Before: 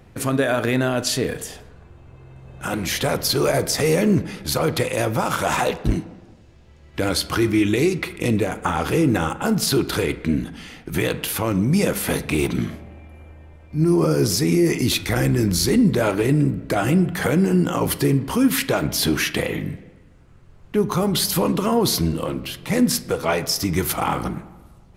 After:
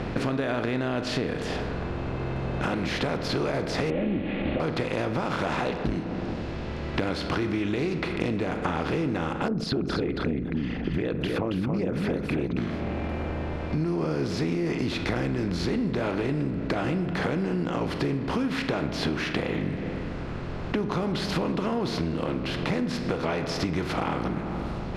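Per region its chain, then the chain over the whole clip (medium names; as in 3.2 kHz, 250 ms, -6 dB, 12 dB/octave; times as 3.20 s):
3.90–4.60 s: one-bit delta coder 16 kbps, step -31 dBFS + high-order bell 1.2 kHz -13.5 dB 1.1 oct + comb 3.6 ms
9.48–12.57 s: resonances exaggerated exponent 2 + delay 275 ms -6 dB + loudspeaker Doppler distortion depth 0.11 ms
whole clip: spectral levelling over time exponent 0.6; low-pass 3.2 kHz 12 dB/octave; compression, threshold -26 dBFS; trim +1 dB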